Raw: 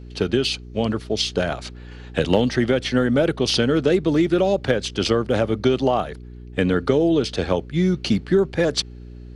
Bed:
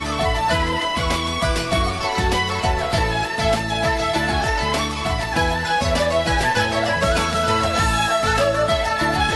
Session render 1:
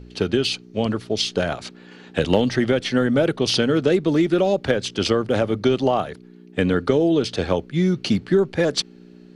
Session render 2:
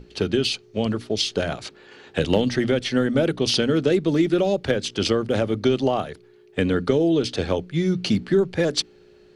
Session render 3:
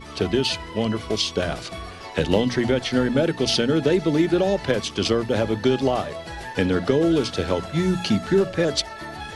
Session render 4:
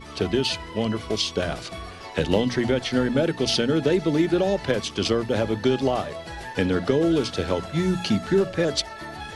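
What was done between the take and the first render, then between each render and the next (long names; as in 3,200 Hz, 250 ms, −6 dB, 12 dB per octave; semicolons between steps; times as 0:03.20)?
hum removal 60 Hz, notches 2
mains-hum notches 60/120/180/240/300 Hz; dynamic equaliser 1,000 Hz, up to −4 dB, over −31 dBFS, Q 0.7
mix in bed −15.5 dB
level −1.5 dB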